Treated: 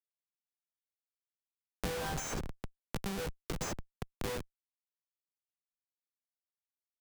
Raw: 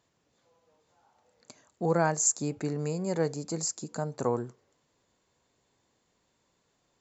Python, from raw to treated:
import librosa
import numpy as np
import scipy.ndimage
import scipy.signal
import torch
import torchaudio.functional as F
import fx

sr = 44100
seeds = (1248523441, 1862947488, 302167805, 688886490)

y = fx.freq_snap(x, sr, grid_st=2)
y = fx.resonator_bank(y, sr, root=36, chord='major', decay_s=0.34)
y = fx.schmitt(y, sr, flips_db=-36.0)
y = fx.band_squash(y, sr, depth_pct=100)
y = F.gain(torch.from_numpy(y), 5.0).numpy()